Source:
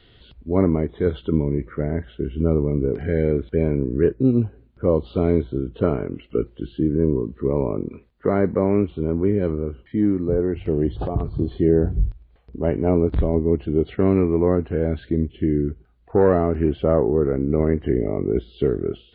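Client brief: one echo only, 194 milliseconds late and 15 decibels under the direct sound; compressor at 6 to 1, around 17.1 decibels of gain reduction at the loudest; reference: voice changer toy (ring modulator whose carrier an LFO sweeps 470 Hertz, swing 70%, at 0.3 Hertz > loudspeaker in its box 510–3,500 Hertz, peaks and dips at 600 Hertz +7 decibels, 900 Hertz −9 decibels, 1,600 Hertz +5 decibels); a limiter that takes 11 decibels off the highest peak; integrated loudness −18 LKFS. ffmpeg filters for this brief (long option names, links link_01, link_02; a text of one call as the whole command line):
ffmpeg -i in.wav -af "acompressor=threshold=-31dB:ratio=6,alimiter=level_in=3.5dB:limit=-24dB:level=0:latency=1,volume=-3.5dB,aecho=1:1:194:0.178,aeval=exprs='val(0)*sin(2*PI*470*n/s+470*0.7/0.3*sin(2*PI*0.3*n/s))':channel_layout=same,highpass=510,equalizer=frequency=600:width_type=q:width=4:gain=7,equalizer=frequency=900:width_type=q:width=4:gain=-9,equalizer=frequency=1600:width_type=q:width=4:gain=5,lowpass=frequency=3500:width=0.5412,lowpass=frequency=3500:width=1.3066,volume=26.5dB" out.wav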